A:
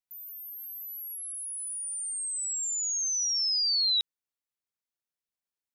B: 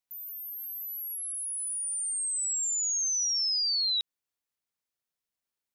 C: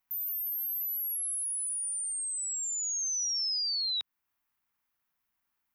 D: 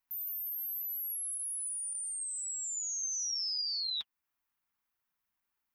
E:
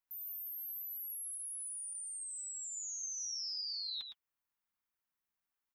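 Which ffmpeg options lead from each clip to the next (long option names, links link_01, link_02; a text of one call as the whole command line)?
ffmpeg -i in.wav -af "acompressor=threshold=-29dB:ratio=6,volume=2.5dB" out.wav
ffmpeg -i in.wav -filter_complex "[0:a]equalizer=frequency=125:width_type=o:width=1:gain=-5,equalizer=frequency=500:width_type=o:width=1:gain=-12,equalizer=frequency=1000:width_type=o:width=1:gain=4,equalizer=frequency=4000:width_type=o:width=1:gain=-8,equalizer=frequency=8000:width_type=o:width=1:gain=-12,asplit=2[link_01][link_02];[link_02]alimiter=level_in=19.5dB:limit=-24dB:level=0:latency=1:release=407,volume=-19.5dB,volume=1.5dB[link_03];[link_01][link_03]amix=inputs=2:normalize=0,volume=4dB" out.wav
ffmpeg -i in.wav -af "flanger=delay=2:depth=9.1:regen=-35:speed=1.8:shape=sinusoidal" out.wav
ffmpeg -i in.wav -af "aecho=1:1:111:0.447,volume=-6.5dB" out.wav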